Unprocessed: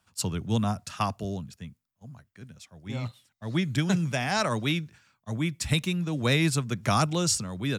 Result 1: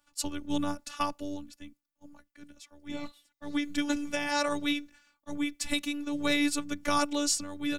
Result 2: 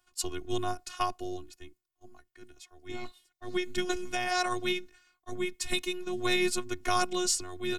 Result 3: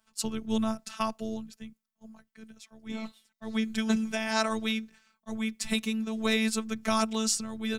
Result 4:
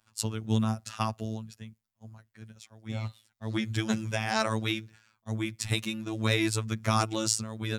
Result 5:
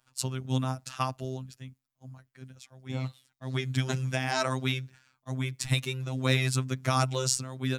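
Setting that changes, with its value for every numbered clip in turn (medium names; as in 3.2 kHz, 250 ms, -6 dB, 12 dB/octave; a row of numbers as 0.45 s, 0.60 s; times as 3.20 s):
robot voice, frequency: 290 Hz, 360 Hz, 220 Hz, 110 Hz, 130 Hz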